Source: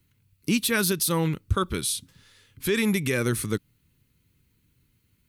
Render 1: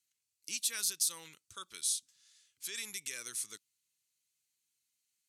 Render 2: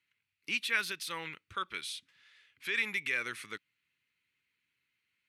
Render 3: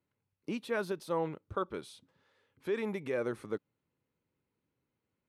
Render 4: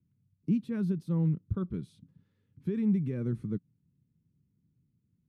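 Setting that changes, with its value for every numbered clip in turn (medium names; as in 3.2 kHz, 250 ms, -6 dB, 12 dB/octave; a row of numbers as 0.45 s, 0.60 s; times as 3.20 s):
band-pass filter, frequency: 6.9 kHz, 2.2 kHz, 660 Hz, 170 Hz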